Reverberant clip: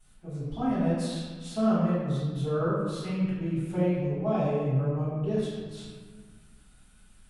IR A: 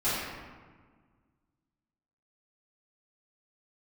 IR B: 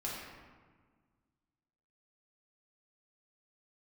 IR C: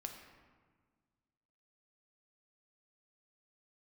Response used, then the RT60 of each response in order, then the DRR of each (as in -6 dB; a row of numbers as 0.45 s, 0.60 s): A; 1.5 s, 1.5 s, 1.6 s; -15.5 dB, -6.0 dB, 3.0 dB